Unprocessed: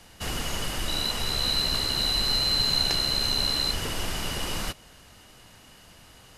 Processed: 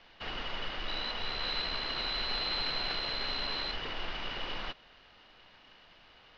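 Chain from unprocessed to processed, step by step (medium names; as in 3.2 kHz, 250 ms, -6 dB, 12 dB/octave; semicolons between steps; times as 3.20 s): CVSD coder 32 kbps; low-pass 3.9 kHz 24 dB/octave; peaking EQ 97 Hz -12.5 dB 3 oct; trim -4 dB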